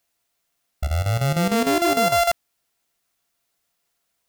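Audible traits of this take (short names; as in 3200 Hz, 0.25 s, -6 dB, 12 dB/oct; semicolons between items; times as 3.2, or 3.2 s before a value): a buzz of ramps at a fixed pitch in blocks of 64 samples; chopped level 6.6 Hz, depth 65%, duty 75%; a quantiser's noise floor 12-bit, dither triangular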